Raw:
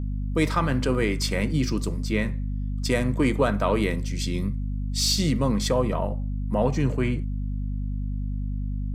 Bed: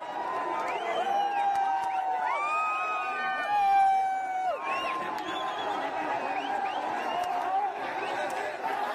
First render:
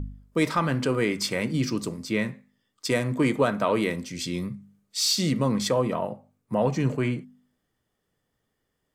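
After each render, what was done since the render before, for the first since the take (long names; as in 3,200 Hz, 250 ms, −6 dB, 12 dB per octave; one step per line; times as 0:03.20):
hum removal 50 Hz, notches 5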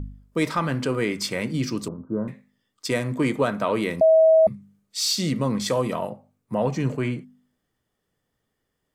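0:01.88–0:02.28: Butterworth low-pass 1,500 Hz 96 dB per octave
0:04.01–0:04.47: beep over 642 Hz −11.5 dBFS
0:05.68–0:06.10: high-shelf EQ 3,500 Hz +10 dB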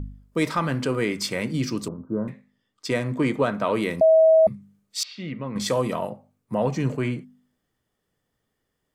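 0:02.29–0:03.65: high-shelf EQ 7,700 Hz −10 dB
0:05.03–0:05.56: transistor ladder low-pass 3,000 Hz, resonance 40%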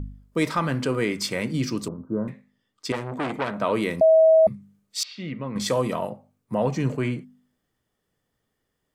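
0:02.92–0:03.60: saturating transformer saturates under 1,500 Hz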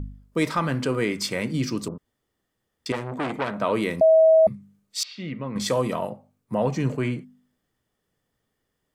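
0:01.98–0:02.86: fill with room tone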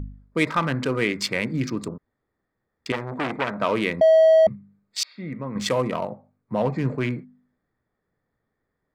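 adaptive Wiener filter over 15 samples
parametric band 2,400 Hz +8 dB 1.6 octaves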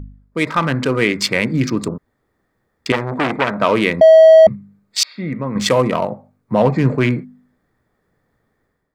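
automatic gain control gain up to 11.5 dB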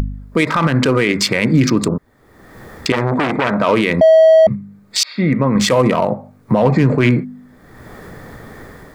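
in parallel at +2 dB: upward compression, threshold −14 dBFS
on the sum: brickwall limiter −4.5 dBFS, peak gain reduction 9.5 dB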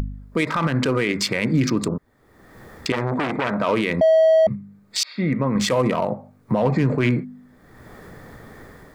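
level −6.5 dB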